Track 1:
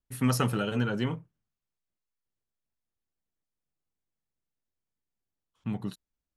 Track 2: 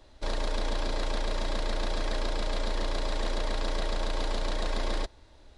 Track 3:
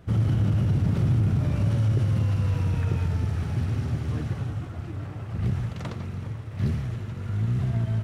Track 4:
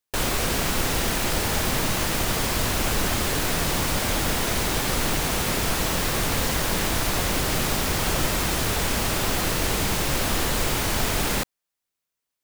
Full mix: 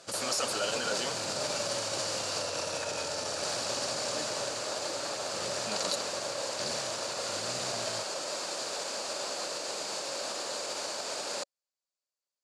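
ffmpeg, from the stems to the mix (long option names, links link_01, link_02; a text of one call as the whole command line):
ffmpeg -i stem1.wav -i stem2.wav -i stem3.wav -i stem4.wav -filter_complex "[0:a]volume=1.5dB[link_01];[1:a]acrusher=samples=19:mix=1:aa=0.000001,adelay=2150,volume=-5.5dB[link_02];[2:a]volume=-2dB[link_03];[3:a]volume=-10dB,asplit=3[link_04][link_05][link_06];[link_04]atrim=end=2.42,asetpts=PTS-STARTPTS,afade=type=out:start_time=2.416:duration=0.004:curve=hsin[link_07];[link_05]atrim=start=2.42:end=3.43,asetpts=PTS-STARTPTS,volume=0[link_08];[link_06]atrim=start=3.43,asetpts=PTS-STARTPTS,afade=type=in:duration=0.004:curve=hsin[link_09];[link_07][link_08][link_09]concat=n=3:v=0:a=1[link_10];[link_02][link_10]amix=inputs=2:normalize=0,alimiter=level_in=0.5dB:limit=-24dB:level=0:latency=1,volume=-0.5dB,volume=0dB[link_11];[link_01][link_03]amix=inputs=2:normalize=0,crystalizer=i=8.5:c=0,alimiter=limit=-21dB:level=0:latency=1:release=20,volume=0dB[link_12];[link_11][link_12]amix=inputs=2:normalize=0,highpass=450,equalizer=frequency=570:width_type=q:width=4:gain=10,equalizer=frequency=2000:width_type=q:width=4:gain=-7,equalizer=frequency=3200:width_type=q:width=4:gain=-4,equalizer=frequency=4600:width_type=q:width=4:gain=9,equalizer=frequency=7100:width_type=q:width=4:gain=6,lowpass=frequency=8700:width=0.5412,lowpass=frequency=8700:width=1.3066" out.wav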